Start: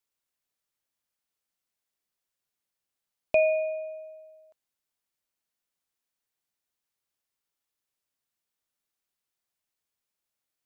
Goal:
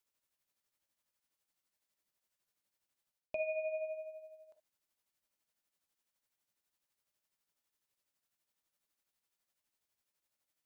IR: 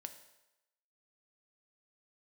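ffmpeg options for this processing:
-filter_complex "[0:a]areverse,acompressor=threshold=-34dB:ratio=10,areverse[a];[1:a]atrim=start_sample=2205,atrim=end_sample=3528[b];[a][b]afir=irnorm=-1:irlink=0,tremolo=f=12:d=0.54,volume=7dB"

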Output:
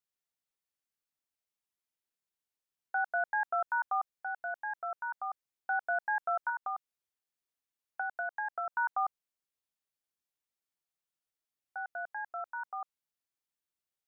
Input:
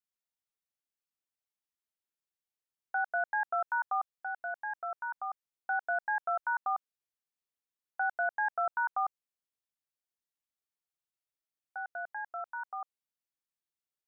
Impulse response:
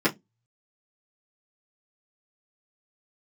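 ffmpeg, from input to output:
-filter_complex "[0:a]asettb=1/sr,asplit=3[a][b][c];[a]atrim=end=6.494[d];[b]atrim=start=6.49:end=8.72,asetpts=PTS-STARTPTS,afade=t=in:d=0.004:c=qsin,afade=t=out:st=2.226:d=0.004:c=qsin,acrossover=split=670|1500[e][f][g];[e]acompressor=threshold=-48dB:ratio=4[h];[f]acompressor=threshold=-38dB:ratio=4[i];[g]acompressor=threshold=-43dB:ratio=4[j];[h][i][j]amix=inputs=3:normalize=0[k];[c]atrim=start=8.716[l];[d][k]acrossfade=d=0.004:c1=hsin:c2=qsin[m];[m][l]acrossfade=d=0.004:c1=qsin:c2=hsin"

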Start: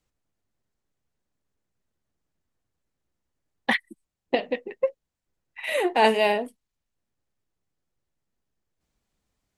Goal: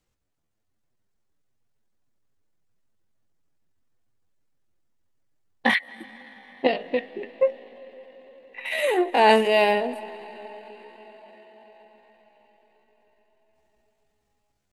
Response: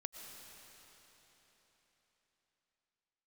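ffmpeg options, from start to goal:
-filter_complex "[0:a]asplit=2[a][b];[1:a]atrim=start_sample=2205,highshelf=f=10k:g=-10.5[c];[b][c]afir=irnorm=-1:irlink=0,volume=-8dB[d];[a][d]amix=inputs=2:normalize=0,atempo=0.65"

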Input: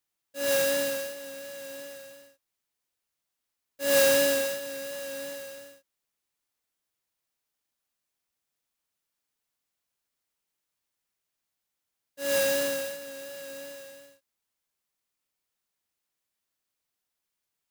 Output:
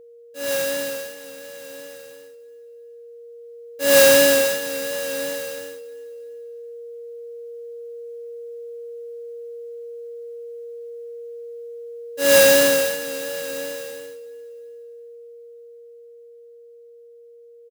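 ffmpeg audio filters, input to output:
-af "aeval=exprs='val(0)+0.00562*sin(2*PI*470*n/s)':c=same,dynaudnorm=f=220:g=31:m=13dB,aecho=1:1:344|688|1032:0.0891|0.0348|0.0136,volume=1.5dB"

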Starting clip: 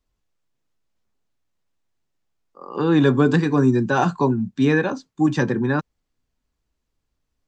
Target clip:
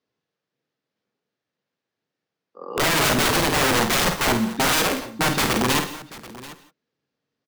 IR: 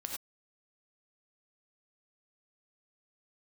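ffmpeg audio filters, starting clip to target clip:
-filter_complex "[0:a]highpass=f=130:w=0.5412,highpass=f=130:w=1.3066,equalizer=f=470:t=q:w=4:g=7,equalizer=f=1k:t=q:w=4:g=-3,equalizer=f=1.7k:t=q:w=4:g=3,lowpass=f=5.5k:w=0.5412,lowpass=f=5.5k:w=1.3066,aeval=exprs='(mod(5.96*val(0)+1,2)-1)/5.96':c=same,aecho=1:1:50|736:0.447|0.126,asplit=2[a][b];[1:a]atrim=start_sample=2205,adelay=71[c];[b][c]afir=irnorm=-1:irlink=0,volume=-11.5dB[d];[a][d]amix=inputs=2:normalize=0"

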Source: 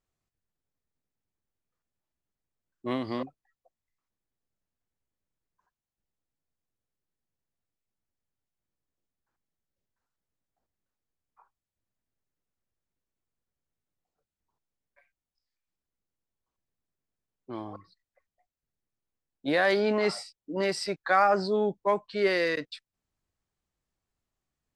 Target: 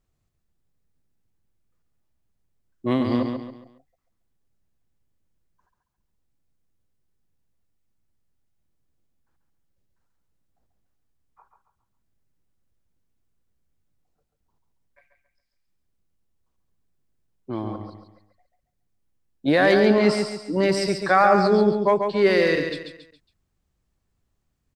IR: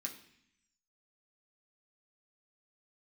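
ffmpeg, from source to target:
-filter_complex "[0:a]lowshelf=f=280:g=10,asplit=2[a][b];[b]aecho=0:1:138|276|414|552:0.501|0.185|0.0686|0.0254[c];[a][c]amix=inputs=2:normalize=0,volume=4dB"

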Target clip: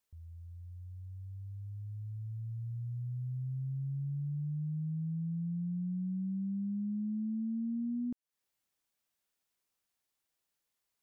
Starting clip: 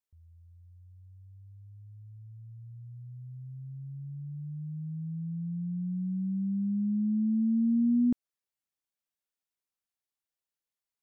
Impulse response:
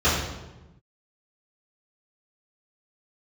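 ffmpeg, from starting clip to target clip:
-af "acompressor=threshold=-41dB:ratio=16,volume=7dB"

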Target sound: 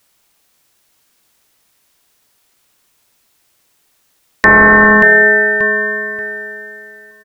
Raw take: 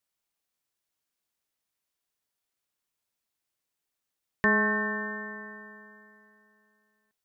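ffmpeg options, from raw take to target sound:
-af "aecho=1:1:583|1166|1749:0.251|0.0703|0.0197,apsyclip=27.5dB,volume=-2dB"

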